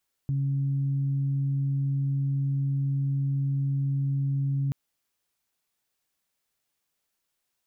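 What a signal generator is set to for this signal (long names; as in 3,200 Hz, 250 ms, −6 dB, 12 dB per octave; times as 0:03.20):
steady harmonic partials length 4.43 s, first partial 138 Hz, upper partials −17 dB, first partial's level −23.5 dB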